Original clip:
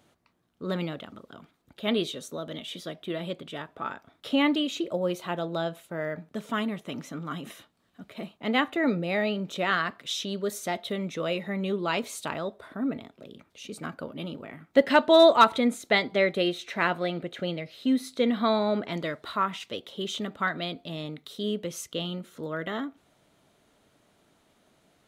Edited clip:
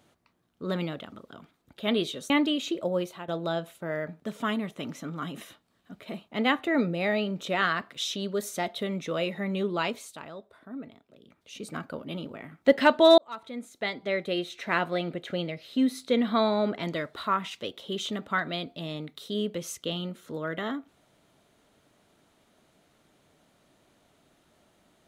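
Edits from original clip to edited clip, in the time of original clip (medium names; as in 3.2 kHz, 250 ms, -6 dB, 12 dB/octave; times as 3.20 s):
2.30–4.39 s: delete
5.05–5.37 s: fade out, to -13.5 dB
11.87–13.68 s: dip -10 dB, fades 0.36 s
15.27–17.04 s: fade in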